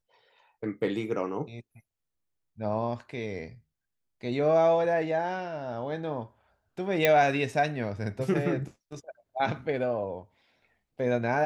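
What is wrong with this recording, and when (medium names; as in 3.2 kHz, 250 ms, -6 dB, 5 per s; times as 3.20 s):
7.05 s: pop -8 dBFS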